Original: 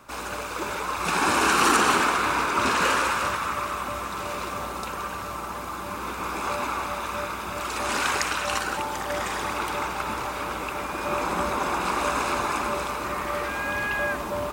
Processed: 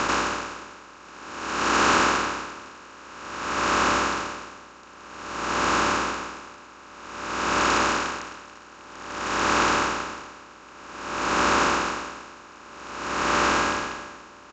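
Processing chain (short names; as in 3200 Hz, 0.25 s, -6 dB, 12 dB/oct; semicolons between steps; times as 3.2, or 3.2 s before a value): per-bin compression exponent 0.2; downsampling 16000 Hz; dB-linear tremolo 0.52 Hz, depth 26 dB; gain -4 dB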